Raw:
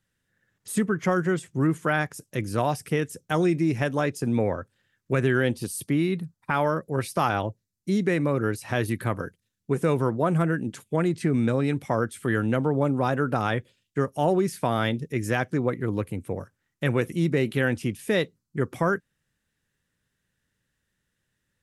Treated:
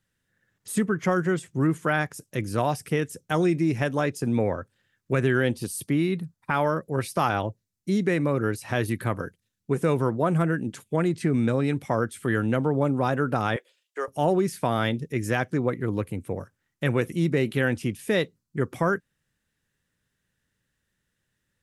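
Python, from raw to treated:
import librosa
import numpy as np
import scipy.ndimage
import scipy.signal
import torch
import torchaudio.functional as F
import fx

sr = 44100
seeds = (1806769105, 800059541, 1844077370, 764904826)

y = fx.highpass(x, sr, hz=460.0, slope=24, at=(13.56, 14.08))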